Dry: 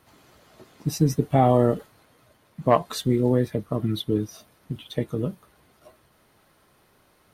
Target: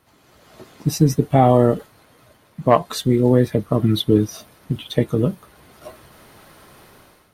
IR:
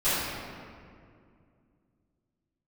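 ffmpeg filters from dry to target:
-af "dynaudnorm=framelen=190:gausssize=5:maxgain=15dB,volume=-1dB"

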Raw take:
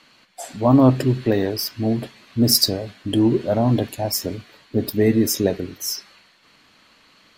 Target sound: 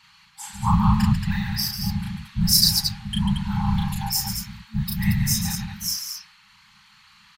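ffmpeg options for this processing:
ffmpeg -i in.wav -af "afftfilt=real='hypot(re,im)*cos(2*PI*random(0))':imag='hypot(re,im)*sin(2*PI*random(1))':win_size=512:overlap=0.75,afftfilt=real='re*(1-between(b*sr/4096,220,780))':imag='im*(1-between(b*sr/4096,220,780))':win_size=4096:overlap=0.75,aecho=1:1:34.99|142.9|227.4:0.794|0.447|0.501,volume=4dB" out.wav

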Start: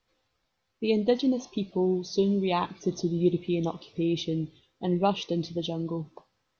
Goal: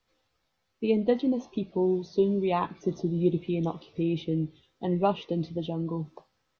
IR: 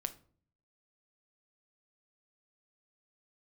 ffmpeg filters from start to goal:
-filter_complex "[0:a]asplit=2[link_01][link_02];[link_02]adelay=13,volume=-11dB[link_03];[link_01][link_03]amix=inputs=2:normalize=0,acrossover=split=230|2700[link_04][link_05][link_06];[link_06]acompressor=threshold=-59dB:ratio=4[link_07];[link_04][link_05][link_07]amix=inputs=3:normalize=0"

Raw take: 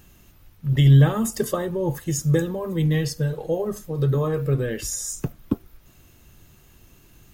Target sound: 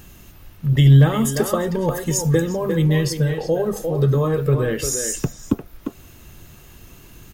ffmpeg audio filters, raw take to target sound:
ffmpeg -i in.wav -filter_complex "[0:a]asettb=1/sr,asplit=3[link_01][link_02][link_03];[link_01]atrim=end=1.664[link_04];[link_02]atrim=start=1.66:end=2.35,asetpts=PTS-STARTPTS,afade=type=in:duration=0.004:curve=qsin,afade=type=out:start_time=0.686:duration=0.004:curve=qsin,aecho=1:1:4.3:0.65,atrim=end_sample=30429[link_05];[link_03]atrim=start=2.346[link_06];[link_04][link_05]acrossfade=duration=0.004:curve1=hsin:curve2=qsin[link_07];[link_07][link_06]acrossfade=duration=0.004:curve1=qsin:curve2=hsin,asplit=2[link_08][link_09];[link_09]adelay=350,highpass=300,lowpass=3400,asoftclip=type=hard:threshold=-14.5dB,volume=-6dB[link_10];[link_08][link_10]amix=inputs=2:normalize=0,asplit=2[link_11][link_12];[link_12]acompressor=threshold=-32dB:ratio=5,volume=1dB[link_13];[link_11][link_13]amix=inputs=2:normalize=0,asoftclip=type=hard:threshold=-6dB,volume=1.5dB" out.wav

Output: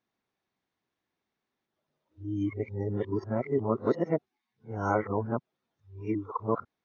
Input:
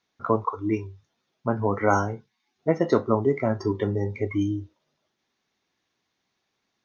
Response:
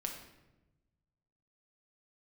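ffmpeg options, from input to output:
-af "areverse,highshelf=frequency=3000:gain=-12,volume=-5.5dB"

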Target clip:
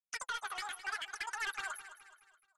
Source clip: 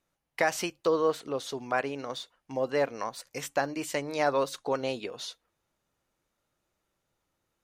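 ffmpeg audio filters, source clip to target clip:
ffmpeg -i in.wav -af "lowpass=frequency=1000:poles=1,aemphasis=mode=production:type=75fm,afftfilt=real='re*gte(hypot(re,im),0.0126)':imag='im*gte(hypot(re,im),0.0126)':win_size=1024:overlap=0.75,highpass=210,lowshelf=frequency=480:gain=-9.5,acompressor=threshold=-36dB:ratio=3,aresample=8000,asoftclip=type=tanh:threshold=-39dB,aresample=44100,asetrate=130536,aresample=44100,flanger=delay=2.9:depth=8:regen=35:speed=0.8:shape=sinusoidal,aecho=1:1:212|424|636|848:0.224|0.0985|0.0433|0.0191,volume=9dB" out.wav

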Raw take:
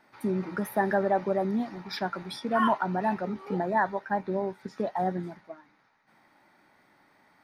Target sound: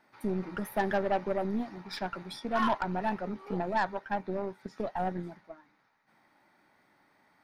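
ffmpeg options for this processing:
ffmpeg -i in.wav -af "aeval=exprs='0.224*(cos(1*acos(clip(val(0)/0.224,-1,1)))-cos(1*PI/2))+0.02*(cos(6*acos(clip(val(0)/0.224,-1,1)))-cos(6*PI/2))':channel_layout=same,volume=-4dB" out.wav

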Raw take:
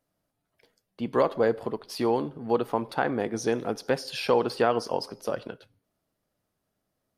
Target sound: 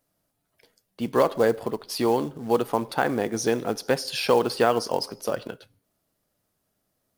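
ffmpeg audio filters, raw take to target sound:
ffmpeg -i in.wav -af "highshelf=frequency=5600:gain=7.5,acrusher=bits=6:mode=log:mix=0:aa=0.000001,volume=2.5dB" out.wav

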